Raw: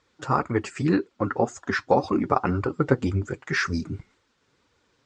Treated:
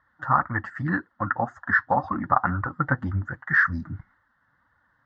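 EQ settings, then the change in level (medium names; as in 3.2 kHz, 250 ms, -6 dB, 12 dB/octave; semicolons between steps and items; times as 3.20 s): resonant low-pass 1.8 kHz, resonance Q 5.9; static phaser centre 1 kHz, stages 4; 0.0 dB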